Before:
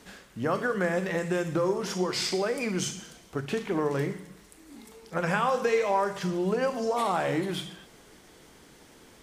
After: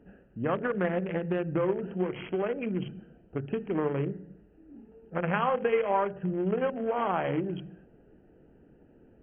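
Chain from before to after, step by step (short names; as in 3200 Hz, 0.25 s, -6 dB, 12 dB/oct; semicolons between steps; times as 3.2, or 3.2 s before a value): Wiener smoothing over 41 samples; brick-wall FIR low-pass 3300 Hz; 0.55–1.4 Doppler distortion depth 0.13 ms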